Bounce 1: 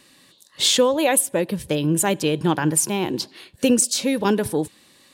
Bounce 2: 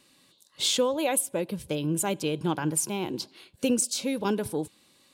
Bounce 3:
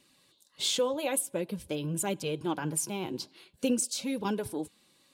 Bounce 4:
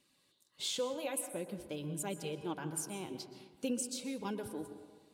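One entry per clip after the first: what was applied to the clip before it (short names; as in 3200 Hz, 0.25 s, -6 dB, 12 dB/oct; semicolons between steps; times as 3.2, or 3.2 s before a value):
notch 1800 Hz, Q 6.7; gain -7.5 dB
flange 0.48 Hz, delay 0.3 ms, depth 7.6 ms, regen -43%
plate-style reverb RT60 1.5 s, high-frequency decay 0.35×, pre-delay 0.11 s, DRR 9.5 dB; gain -8 dB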